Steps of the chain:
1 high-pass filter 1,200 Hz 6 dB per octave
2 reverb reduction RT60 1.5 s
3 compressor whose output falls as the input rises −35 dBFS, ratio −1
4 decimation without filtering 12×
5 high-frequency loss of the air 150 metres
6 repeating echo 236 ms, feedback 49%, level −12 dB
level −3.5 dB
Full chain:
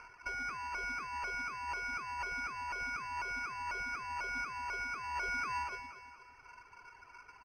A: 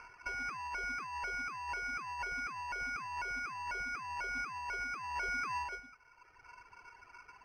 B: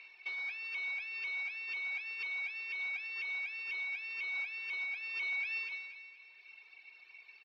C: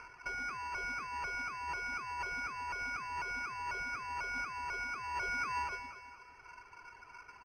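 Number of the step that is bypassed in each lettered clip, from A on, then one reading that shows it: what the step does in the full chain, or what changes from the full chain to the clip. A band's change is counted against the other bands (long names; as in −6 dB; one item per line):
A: 6, echo-to-direct ratio −11.0 dB to none audible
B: 4, change in integrated loudness +1.5 LU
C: 1, change in crest factor +2.5 dB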